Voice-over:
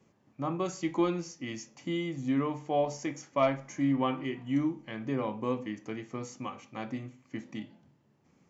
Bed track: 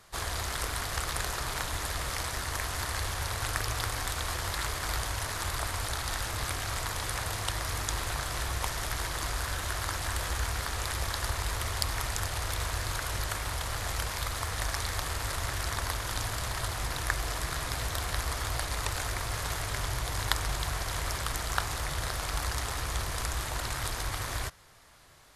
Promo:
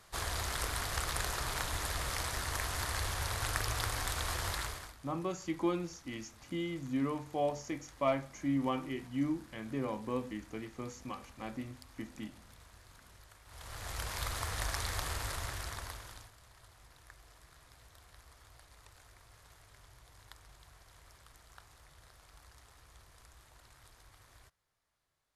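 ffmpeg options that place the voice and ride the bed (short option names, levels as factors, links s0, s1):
-filter_complex "[0:a]adelay=4650,volume=0.596[s0];[1:a]volume=8.41,afade=t=out:st=4.5:d=0.44:silence=0.0749894,afade=t=in:st=13.46:d=0.78:silence=0.0841395,afade=t=out:st=15.11:d=1.21:silence=0.0749894[s1];[s0][s1]amix=inputs=2:normalize=0"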